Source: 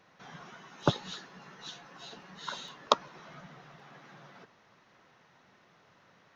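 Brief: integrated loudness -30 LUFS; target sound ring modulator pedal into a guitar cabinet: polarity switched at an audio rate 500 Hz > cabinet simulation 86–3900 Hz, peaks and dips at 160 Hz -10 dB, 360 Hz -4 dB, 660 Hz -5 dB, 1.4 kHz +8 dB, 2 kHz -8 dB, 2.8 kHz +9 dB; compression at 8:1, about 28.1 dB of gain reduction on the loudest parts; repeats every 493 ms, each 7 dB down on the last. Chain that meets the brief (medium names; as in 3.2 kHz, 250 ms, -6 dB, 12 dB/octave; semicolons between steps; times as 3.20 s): compression 8:1, threshold -49 dBFS; feedback delay 493 ms, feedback 45%, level -7 dB; polarity switched at an audio rate 500 Hz; cabinet simulation 86–3900 Hz, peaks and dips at 160 Hz -10 dB, 360 Hz -4 dB, 660 Hz -5 dB, 1.4 kHz +8 dB, 2 kHz -8 dB, 2.8 kHz +9 dB; trim +22 dB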